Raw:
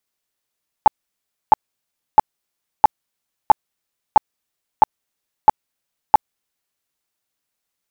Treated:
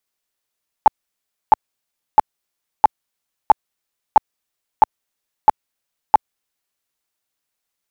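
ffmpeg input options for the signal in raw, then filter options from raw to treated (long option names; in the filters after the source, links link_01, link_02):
-f lavfi -i "aevalsrc='0.708*sin(2*PI*860*mod(t,0.66))*lt(mod(t,0.66),14/860)':duration=5.94:sample_rate=44100"
-af "equalizer=frequency=150:width_type=o:width=2.4:gain=-3"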